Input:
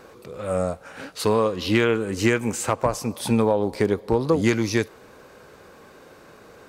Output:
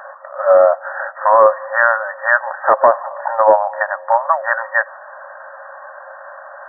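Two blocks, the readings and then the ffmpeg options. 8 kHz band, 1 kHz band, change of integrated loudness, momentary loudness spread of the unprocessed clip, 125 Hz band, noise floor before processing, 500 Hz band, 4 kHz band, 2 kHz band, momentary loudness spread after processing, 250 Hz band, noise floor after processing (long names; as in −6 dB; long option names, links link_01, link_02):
below −40 dB, +15.5 dB, +8.0 dB, 10 LU, below −25 dB, −49 dBFS, +8.0 dB, below −40 dB, +13.0 dB, 23 LU, −19.0 dB, −37 dBFS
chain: -af "afftfilt=real='re*between(b*sr/4096,530,1900)':imag='im*between(b*sr/4096,530,1900)':win_size=4096:overlap=0.75,apsyclip=18dB,volume=-1.5dB"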